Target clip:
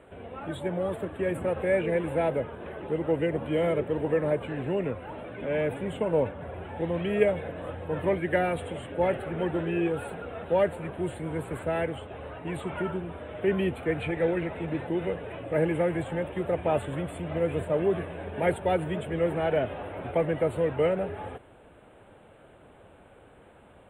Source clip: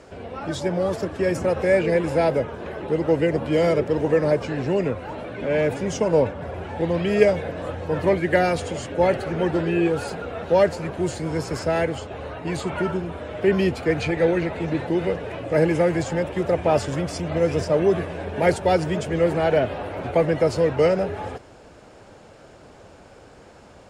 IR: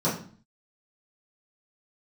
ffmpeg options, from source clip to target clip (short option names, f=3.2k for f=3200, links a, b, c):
-af "asuperstop=centerf=5500:order=8:qfactor=1.2,volume=-6.5dB"